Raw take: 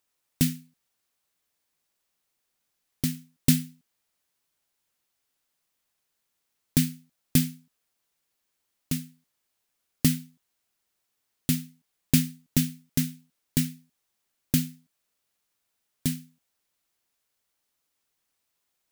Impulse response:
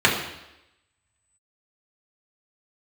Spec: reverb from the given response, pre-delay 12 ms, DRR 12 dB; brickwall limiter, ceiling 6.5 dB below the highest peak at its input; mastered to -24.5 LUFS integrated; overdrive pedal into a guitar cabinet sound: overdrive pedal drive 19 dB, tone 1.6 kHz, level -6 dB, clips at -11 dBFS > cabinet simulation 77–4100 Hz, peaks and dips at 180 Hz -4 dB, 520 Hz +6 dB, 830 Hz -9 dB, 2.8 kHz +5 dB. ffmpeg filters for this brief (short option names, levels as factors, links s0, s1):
-filter_complex "[0:a]alimiter=limit=0.266:level=0:latency=1,asplit=2[s0][s1];[1:a]atrim=start_sample=2205,adelay=12[s2];[s1][s2]afir=irnorm=-1:irlink=0,volume=0.0224[s3];[s0][s3]amix=inputs=2:normalize=0,asplit=2[s4][s5];[s5]highpass=f=720:p=1,volume=8.91,asoftclip=type=tanh:threshold=0.282[s6];[s4][s6]amix=inputs=2:normalize=0,lowpass=f=1600:p=1,volume=0.501,highpass=77,equalizer=f=180:t=q:w=4:g=-4,equalizer=f=520:t=q:w=4:g=6,equalizer=f=830:t=q:w=4:g=-9,equalizer=f=2800:t=q:w=4:g=5,lowpass=f=4100:w=0.5412,lowpass=f=4100:w=1.3066,volume=2.37"